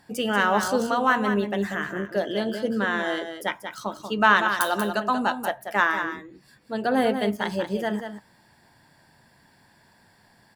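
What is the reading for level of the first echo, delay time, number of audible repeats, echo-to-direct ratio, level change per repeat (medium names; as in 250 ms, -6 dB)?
-8.0 dB, 187 ms, 1, -8.0 dB, no regular repeats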